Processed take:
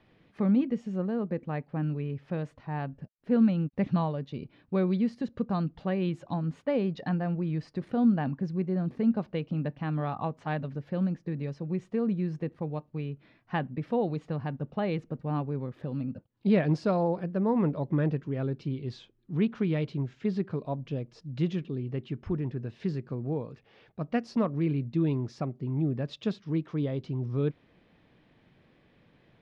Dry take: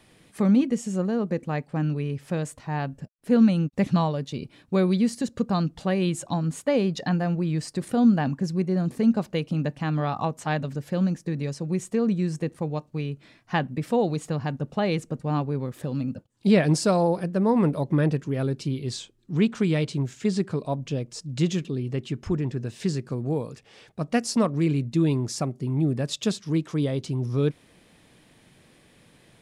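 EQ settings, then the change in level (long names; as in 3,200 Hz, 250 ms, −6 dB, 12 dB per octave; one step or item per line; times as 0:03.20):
high-frequency loss of the air 280 metres
−4.5 dB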